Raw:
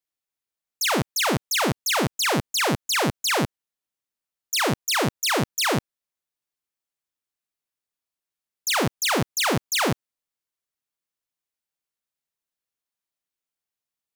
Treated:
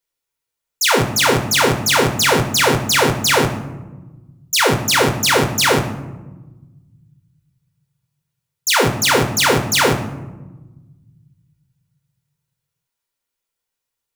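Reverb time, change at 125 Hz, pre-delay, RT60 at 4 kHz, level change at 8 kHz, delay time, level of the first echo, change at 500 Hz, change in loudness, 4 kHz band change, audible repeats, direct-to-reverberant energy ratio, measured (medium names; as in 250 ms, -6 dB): 1.1 s, +8.5 dB, 4 ms, 0.55 s, +8.0 dB, no echo, no echo, +9.5 dB, +8.0 dB, +7.5 dB, no echo, 3.5 dB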